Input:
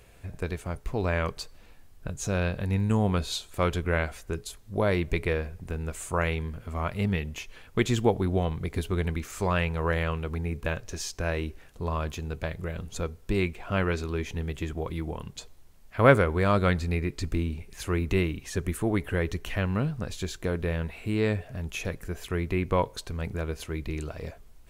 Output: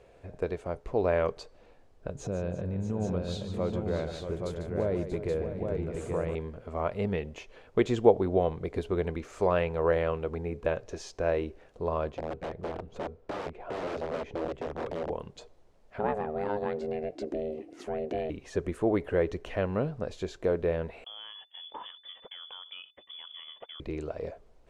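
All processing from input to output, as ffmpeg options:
-filter_complex "[0:a]asettb=1/sr,asplit=3[a][b][c];[a]atrim=end=2.154[d];[b]atrim=start=2.15:end=6.35,asetpts=PTS-STARTPTS,afade=t=in:d=0.004:c=qsin,afade=t=out:st=4.196:d=0.004:c=qsin,equalizer=f=140:w=0.45:g=12,acompressor=threshold=-30dB:ratio=2.5:attack=3.2:release=140:knee=1:detection=peak,aecho=1:1:147|340|635|827:0.316|0.178|0.316|0.596,atrim=end_sample=185220[e];[c]atrim=start=6.346[f];[d][e]acrossfade=d=0.004:c1=hsin:c2=qsin[g];[g][f]acrossfade=d=0.004:c1=qsin:c2=hsin,asettb=1/sr,asplit=3[h][i][j];[h]atrim=end=12.094[k];[i]atrim=start=12.09:end=15.1,asetpts=PTS-STARTPTS,afade=t=in:d=0.004:c=qsin,afade=t=out:st=3.006:d=0.004:c=qsin,aeval=exprs='(mod(23.7*val(0)+1,2)-1)/23.7':c=same,lowpass=f=1.8k:p=1[l];[j]atrim=start=15.096[m];[k][l]acrossfade=d=0.004:c1=hsin:c2=qsin[n];[n][m]acrossfade=d=0.004:c1=qsin:c2=hsin,asettb=1/sr,asplit=3[o][p][q];[o]atrim=end=15.994[r];[p]atrim=start=15.99:end=18.3,asetpts=PTS-STARTPTS,afade=t=in:d=0.004:c=qsin,afade=t=out:st=2.306:d=0.004:c=qsin,acompressor=threshold=-30dB:ratio=2:attack=3.2:release=140:knee=1:detection=peak,aeval=exprs='val(0)*sin(2*PI*310*n/s)':c=same[s];[q]atrim=start=18.296[t];[r][s]acrossfade=d=0.004:c1=hsin:c2=qsin[u];[u][t]acrossfade=d=0.004:c1=qsin:c2=hsin,asettb=1/sr,asplit=3[v][w][x];[v]atrim=end=21.044[y];[w]atrim=start=21.04:end=23.8,asetpts=PTS-STARTPTS,afade=t=in:d=0.004:c=qsin,afade=t=out:st=2.756:d=0.004:c=qsin,agate=range=-34dB:threshold=-41dB:ratio=16:release=100:detection=peak,acompressor=threshold=-33dB:ratio=10:attack=3.2:release=140:knee=1:detection=peak,lowpass=f=3k:t=q:w=0.5098,lowpass=f=3k:t=q:w=0.6013,lowpass=f=3k:t=q:w=0.9,lowpass=f=3k:t=q:w=2.563,afreqshift=-3500[z];[x]atrim=start=23.796[aa];[y][z]acrossfade=d=0.004:c1=hsin:c2=qsin[ab];[ab][aa]acrossfade=d=0.004:c1=qsin:c2=hsin,lowpass=6.6k,equalizer=f=530:t=o:w=1.8:g=14.5,volume=-8.5dB"

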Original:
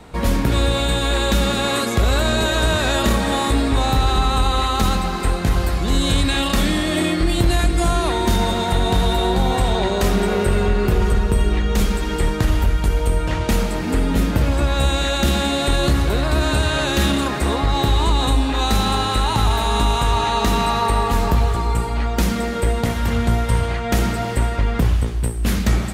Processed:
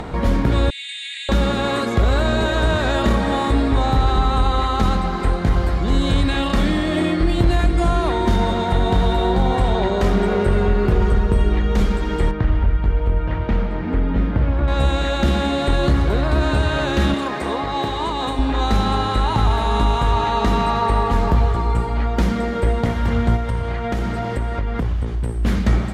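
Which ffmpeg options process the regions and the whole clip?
-filter_complex "[0:a]asettb=1/sr,asplit=3[a][b][c];[a]atrim=end=0.704[d];[b]atrim=start=0.7:end=1.29,asetpts=PTS-STARTPTS,afade=t=in:d=0.004:c=qsin,afade=t=out:st=0.586:d=0.004:c=qsin,asuperpass=centerf=4500:order=20:qfactor=0.58,equalizer=f=5.4k:w=3.6:g=-13[e];[c]atrim=start=1.286[f];[d][e]acrossfade=d=0.004:c1=hsin:c2=qsin[g];[g][f]acrossfade=d=0.004:c1=qsin:c2=hsin,asettb=1/sr,asplit=3[h][i][j];[h]atrim=end=12.314[k];[i]atrim=start=12.31:end=14.68,asetpts=PTS-STARTPTS,afade=t=in:d=0.004:c=qsin,afade=t=out:st=2.366:d=0.004:c=qsin,lowpass=2.4k,equalizer=f=530:w=0.32:g=-4[l];[j]atrim=start=14.676[m];[k][l]acrossfade=d=0.004:c1=hsin:c2=qsin[n];[n][m]acrossfade=d=0.004:c1=qsin:c2=hsin,asettb=1/sr,asplit=3[o][p][q];[o]atrim=end=17.144[r];[p]atrim=start=17.14:end=18.39,asetpts=PTS-STARTPTS,afade=t=in:d=0.004:c=qsin,afade=t=out:st=1.246:d=0.004:c=qsin,highpass=f=350:p=1,bandreject=f=1.4k:w=24[s];[q]atrim=start=18.386[t];[r][s]acrossfade=d=0.004:c1=hsin:c2=qsin[u];[u][t]acrossfade=d=0.004:c1=qsin:c2=hsin,asettb=1/sr,asplit=3[v][w][x];[v]atrim=end=23.364[y];[w]atrim=start=23.36:end=25.29,asetpts=PTS-STARTPTS,afade=t=in:d=0.004:c=qsin,afade=t=out:st=1.926:d=0.004:c=qsin,acompressor=threshold=-20dB:ratio=2.5:attack=3.2:release=140:knee=1:detection=peak,aeval=exprs='sgn(val(0))*max(abs(val(0))-0.00299,0)':c=same[z];[x]atrim=start=25.286[aa];[y][z]acrossfade=d=0.004:c1=hsin:c2=qsin[ab];[ab][aa]acrossfade=d=0.004:c1=qsin:c2=hsin,acompressor=mode=upward:threshold=-20dB:ratio=2.5,aemphasis=mode=reproduction:type=75fm,bandreject=f=2.6k:w=19"

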